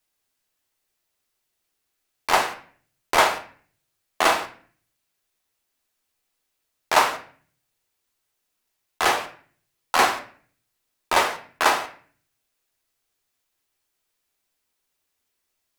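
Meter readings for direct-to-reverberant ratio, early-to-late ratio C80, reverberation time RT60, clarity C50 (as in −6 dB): 4.0 dB, 16.0 dB, 0.45 s, 11.5 dB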